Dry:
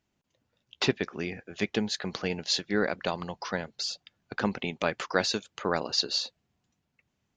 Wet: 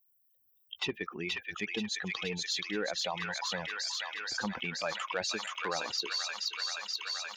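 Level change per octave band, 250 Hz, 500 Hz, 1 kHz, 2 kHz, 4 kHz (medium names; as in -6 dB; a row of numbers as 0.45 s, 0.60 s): -8.0 dB, -7.5 dB, -3.5 dB, -1.0 dB, -2.0 dB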